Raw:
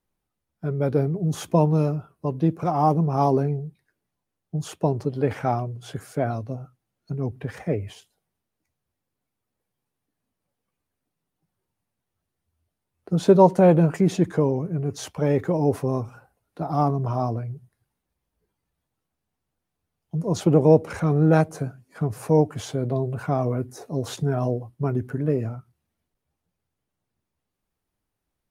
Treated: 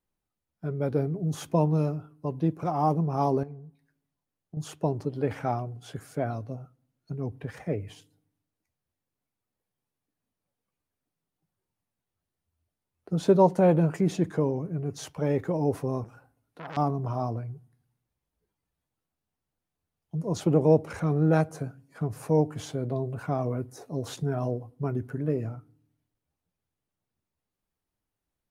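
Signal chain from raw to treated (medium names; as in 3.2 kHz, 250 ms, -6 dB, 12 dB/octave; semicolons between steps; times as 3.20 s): 3.43–4.57 s: compression 6:1, threshold -35 dBFS, peak gain reduction 13 dB; on a send at -24 dB: reverberation RT60 0.75 s, pre-delay 3 ms; 16.04–16.77 s: on the sum: transformer saturation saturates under 2.6 kHz; trim -5 dB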